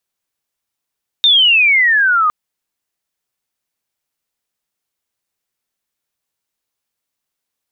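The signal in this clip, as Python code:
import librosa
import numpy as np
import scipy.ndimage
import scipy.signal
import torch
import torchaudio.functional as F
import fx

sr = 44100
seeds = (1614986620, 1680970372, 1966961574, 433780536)

y = fx.chirp(sr, length_s=1.06, from_hz=3700.0, to_hz=1200.0, law='logarithmic', from_db=-6.5, to_db=-10.0)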